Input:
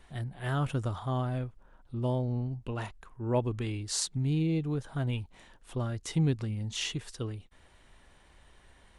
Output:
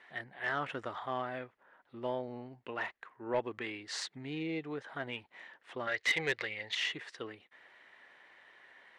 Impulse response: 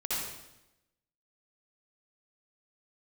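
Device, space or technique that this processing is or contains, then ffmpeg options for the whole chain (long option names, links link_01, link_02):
intercom: -filter_complex "[0:a]asettb=1/sr,asplit=3[link_01][link_02][link_03];[link_01]atrim=end=5.874[link_04];[link_02]atrim=start=5.87:end=6.75,asetpts=PTS-STARTPTS,afade=type=in:duration=0.004:curve=qsin,afade=type=out:start_time=0.876:duration=0.004:curve=qsin,equalizer=frequency=250:width_type=o:width=1:gain=-12,equalizer=frequency=500:width_type=o:width=1:gain=10,equalizer=frequency=2000:width_type=o:width=1:gain=11,equalizer=frequency=4000:width_type=o:width=1:gain=11[link_05];[link_03]atrim=start=6.746[link_06];[link_04][link_05]acrossfade=duration=0.004:curve1=hsin:curve2=qsin[link_07];[link_07][link_06]acrossfade=duration=0.004:curve1=qsin:curve2=hsin,highpass=420,lowpass=3700,equalizer=frequency=1900:width_type=o:width=0.54:gain=10.5,asoftclip=type=tanh:threshold=-22dB"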